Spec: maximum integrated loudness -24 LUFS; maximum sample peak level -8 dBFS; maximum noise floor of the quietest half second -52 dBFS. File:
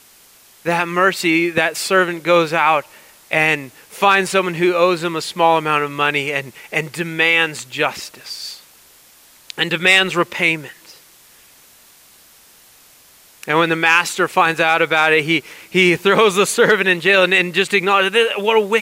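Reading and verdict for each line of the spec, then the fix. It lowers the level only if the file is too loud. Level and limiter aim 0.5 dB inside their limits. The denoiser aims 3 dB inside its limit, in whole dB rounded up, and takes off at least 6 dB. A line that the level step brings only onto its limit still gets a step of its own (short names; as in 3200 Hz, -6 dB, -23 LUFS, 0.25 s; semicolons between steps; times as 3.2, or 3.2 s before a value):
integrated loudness -15.5 LUFS: fail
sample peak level -2.0 dBFS: fail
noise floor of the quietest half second -48 dBFS: fail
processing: gain -9 dB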